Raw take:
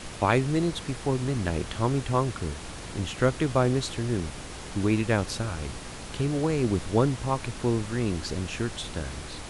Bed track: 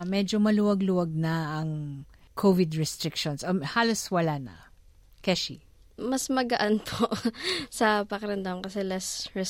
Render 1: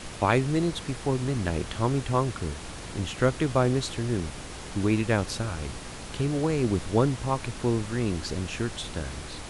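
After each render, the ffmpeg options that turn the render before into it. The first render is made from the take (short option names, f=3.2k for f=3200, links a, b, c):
-af anull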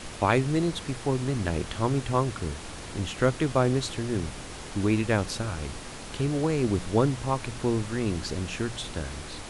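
-af "bandreject=f=60:t=h:w=4,bandreject=f=120:t=h:w=4,bandreject=f=180:t=h:w=4"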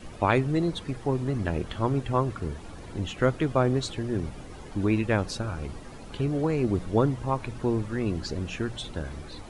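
-af "afftdn=nr=12:nf=-40"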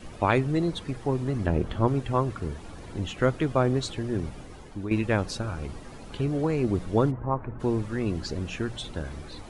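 -filter_complex "[0:a]asettb=1/sr,asplit=3[a][b][c];[a]atrim=end=1.464[d];[b]atrim=start=1.46:end=1.88,asetpts=PTS-STARTPTS,afade=t=in:d=0.004:c=qsin,afade=t=out:st=0.416:d=0.004:c=qsin,tiltshelf=f=1.3k:g=4.5[e];[c]atrim=start=1.876[f];[d][e]acrossfade=d=0.004:c1=hsin:c2=qsin[g];[g][f]acrossfade=d=0.004:c1=qsin:c2=hsin,asplit=3[h][i][j];[h]afade=t=out:st=7.1:d=0.02[k];[i]lowpass=f=1.6k:w=0.5412,lowpass=f=1.6k:w=1.3066,afade=t=in:st=7.1:d=0.02,afade=t=out:st=7.59:d=0.02[l];[j]afade=t=in:st=7.59:d=0.02[m];[k][l][m]amix=inputs=3:normalize=0,asplit=2[n][o];[n]atrim=end=4.91,asetpts=PTS-STARTPTS,afade=t=out:st=4.18:d=0.73:c=qsin:silence=0.316228[p];[o]atrim=start=4.91,asetpts=PTS-STARTPTS,afade=t=in:d=0.004:c=hsin:silence=0.316228[q];[p][q]concat=n=2:v=0:a=1"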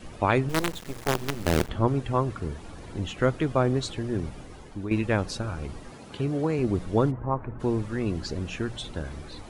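-filter_complex "[0:a]asettb=1/sr,asplit=3[a][b][c];[a]atrim=end=0.494[d];[b]atrim=start=0.49:end=1.69,asetpts=PTS-STARTPTS,afade=t=in:d=0.004:c=qsin,afade=t=out:st=1.196:d=0.004:c=qsin,acrusher=bits=4:dc=4:mix=0:aa=0.000001[e];[c]atrim=start=1.686[f];[d][e]acrossfade=d=0.004:c1=hsin:c2=qsin[g];[g][f]acrossfade=d=0.004:c1=qsin:c2=hsin,asettb=1/sr,asplit=3[h][i][j];[h]atrim=end=5.914[k];[i]atrim=start=5.91:end=6.59,asetpts=PTS-STARTPTS,afade=t=in:d=0.004:c=qsin,afade=t=out:st=0.676:d=0.004:c=qsin,highpass=99[l];[j]atrim=start=6.586[m];[k][l]acrossfade=d=0.004:c1=hsin:c2=qsin[n];[n][m]acrossfade=d=0.004:c1=qsin:c2=hsin"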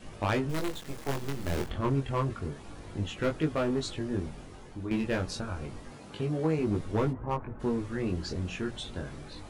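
-af "volume=19dB,asoftclip=hard,volume=-19dB,flanger=delay=19:depth=3.5:speed=0.3"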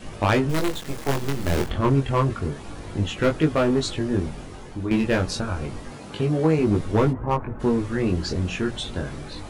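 -af "volume=8.5dB"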